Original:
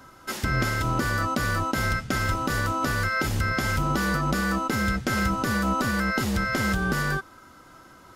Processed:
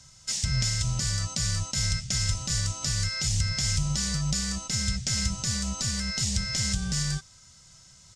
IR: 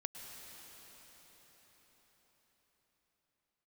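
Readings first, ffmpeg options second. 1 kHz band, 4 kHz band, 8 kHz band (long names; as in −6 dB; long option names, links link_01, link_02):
−17.5 dB, +6.0 dB, +10.0 dB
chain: -af "firequalizer=gain_entry='entry(160,0);entry(280,-24);entry(590,-14);entry(1400,-19);entry(1900,-7);entry(5600,11);entry(8000,11);entry(12000,-17)':delay=0.05:min_phase=1"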